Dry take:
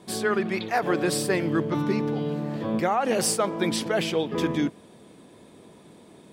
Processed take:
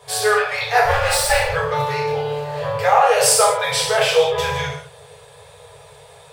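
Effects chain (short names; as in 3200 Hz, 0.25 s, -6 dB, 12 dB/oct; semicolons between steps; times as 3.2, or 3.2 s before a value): 0.85–1.53 minimum comb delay 3.5 ms; non-linear reverb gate 0.23 s falling, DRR -5.5 dB; FFT band-reject 160–410 Hz; gain +4.5 dB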